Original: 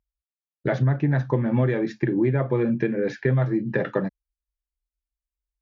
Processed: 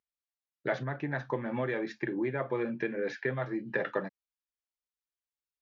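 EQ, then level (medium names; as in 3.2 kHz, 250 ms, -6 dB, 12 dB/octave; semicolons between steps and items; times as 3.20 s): high-pass 810 Hz 6 dB/octave; distance through air 72 m; -1.5 dB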